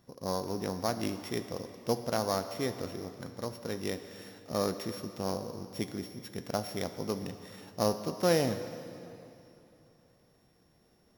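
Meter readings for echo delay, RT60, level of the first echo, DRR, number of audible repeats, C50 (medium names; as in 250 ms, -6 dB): no echo, 3.0 s, no echo, 9.0 dB, no echo, 10.0 dB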